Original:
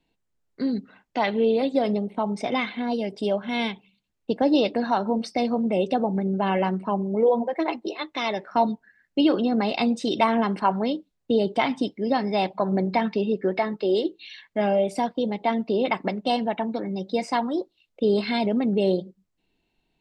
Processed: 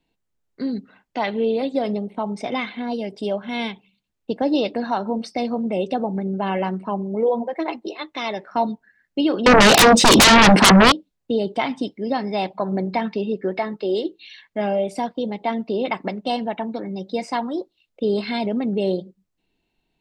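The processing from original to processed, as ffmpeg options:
ffmpeg -i in.wav -filter_complex "[0:a]asettb=1/sr,asplit=3[link_01][link_02][link_03];[link_01]atrim=end=9.464[link_04];[link_02]atrim=start=9.46:end=10.92,asetpts=PTS-STARTPTS,afade=type=in:duration=0.004:curve=qsin,afade=type=out:start_time=1.456:duration=0.004:curve=qsin,aeval=exprs='0.422*sin(PI/2*8.91*val(0)/0.422)':channel_layout=same[link_05];[link_03]atrim=start=10.916[link_06];[link_04][link_05]acrossfade=duration=0.004:curve1=hsin:curve2=qsin[link_07];[link_07][link_06]acrossfade=duration=0.004:curve1=qsin:curve2=hsin" out.wav

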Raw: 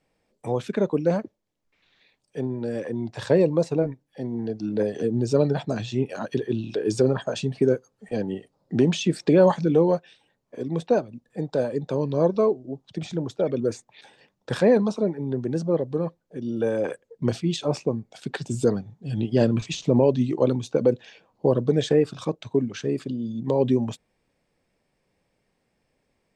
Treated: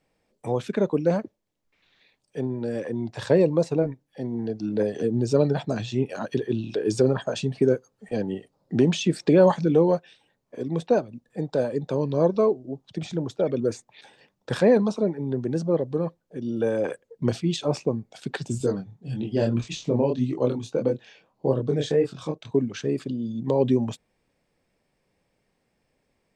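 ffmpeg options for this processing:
ffmpeg -i in.wav -filter_complex "[0:a]asettb=1/sr,asplit=3[link_01][link_02][link_03];[link_01]atrim=end=18.584[link_04];[link_02]atrim=start=18.58:end=22.51,asetpts=PTS-STARTPTS,afade=type=in:duration=0.004:curve=qsin,afade=type=out:start_time=3.926:duration=0.004:curve=qsin,flanger=delay=22.5:depth=5:speed=1.7[link_05];[link_03]atrim=start=22.506[link_06];[link_04][link_05]acrossfade=duration=0.004:curve1=hsin:curve2=qsin[link_07];[link_07][link_06]acrossfade=duration=0.004:curve1=qsin:curve2=hsin" out.wav

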